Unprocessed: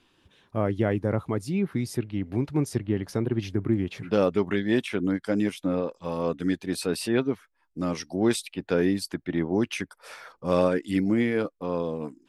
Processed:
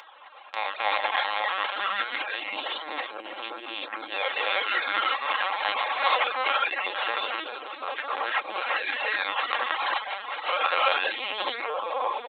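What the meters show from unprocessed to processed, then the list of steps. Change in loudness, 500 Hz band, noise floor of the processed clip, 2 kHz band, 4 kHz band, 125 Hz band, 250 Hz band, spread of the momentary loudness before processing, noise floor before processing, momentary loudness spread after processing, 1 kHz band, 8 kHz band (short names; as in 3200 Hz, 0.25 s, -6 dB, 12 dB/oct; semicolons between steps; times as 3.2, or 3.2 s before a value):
0.0 dB, -7.0 dB, -43 dBFS, +10.5 dB, +10.5 dB, under -40 dB, -24.0 dB, 7 LU, -71 dBFS, 10 LU, +11.5 dB, under -30 dB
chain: bell 1900 Hz -15 dB 0.41 oct; diffused feedback echo 0.527 s, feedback 70%, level -12.5 dB; limiter -18.5 dBFS, peak gain reduction 8.5 dB; decimation with a swept rate 18×, swing 160% 0.23 Hz; non-linear reverb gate 0.4 s rising, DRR -4.5 dB; LPC vocoder at 8 kHz pitch kept; upward compressor, threshold -37 dBFS; HPF 770 Hz 24 dB/oct; comb 3.7 ms, depth 46%; reverb removal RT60 0.56 s; gain +8.5 dB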